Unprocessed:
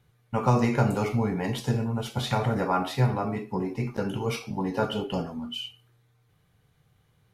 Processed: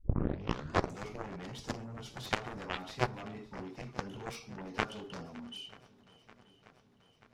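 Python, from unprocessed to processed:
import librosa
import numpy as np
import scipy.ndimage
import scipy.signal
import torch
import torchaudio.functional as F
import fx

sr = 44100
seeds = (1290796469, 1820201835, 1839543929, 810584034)

p1 = fx.tape_start_head(x, sr, length_s=1.03)
p2 = fx.high_shelf(p1, sr, hz=3900.0, db=-11.0)
p3 = fx.rider(p2, sr, range_db=5, speed_s=0.5)
p4 = p2 + (p3 * librosa.db_to_amplitude(-2.5))
p5 = fx.peak_eq(p4, sr, hz=5700.0, db=12.5, octaves=1.5)
p6 = fx.cheby_harmonics(p5, sr, harmonics=(3, 5), levels_db=(-7, -31), full_scale_db=-6.5)
p7 = p6 + fx.echo_swing(p6, sr, ms=935, ratio=1.5, feedback_pct=57, wet_db=-21.0, dry=0)
y = p7 * librosa.db_to_amplitude(-3.5)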